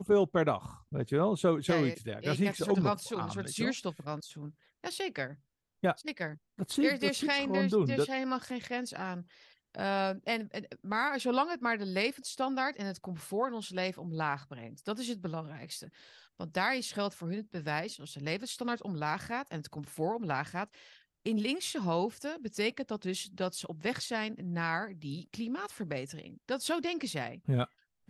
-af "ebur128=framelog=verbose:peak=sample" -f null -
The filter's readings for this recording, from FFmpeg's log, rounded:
Integrated loudness:
  I:         -33.8 LUFS
  Threshold: -44.1 LUFS
Loudness range:
  LRA:         5.4 LU
  Threshold: -54.4 LUFS
  LRA low:   -37.0 LUFS
  LRA high:  -31.6 LUFS
Sample peak:
  Peak:      -15.7 dBFS